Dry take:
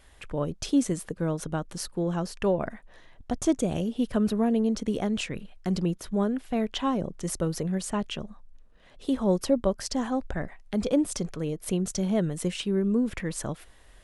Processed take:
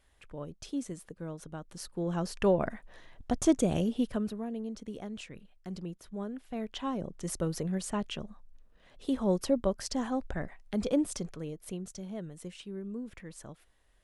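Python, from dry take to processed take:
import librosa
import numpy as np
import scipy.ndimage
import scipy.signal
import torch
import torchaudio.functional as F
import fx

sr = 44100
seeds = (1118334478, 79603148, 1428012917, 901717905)

y = fx.gain(x, sr, db=fx.line((1.56, -12.0), (2.36, -0.5), (3.93, -0.5), (4.4, -13.0), (6.09, -13.0), (7.39, -4.0), (11.01, -4.0), (12.04, -14.5)))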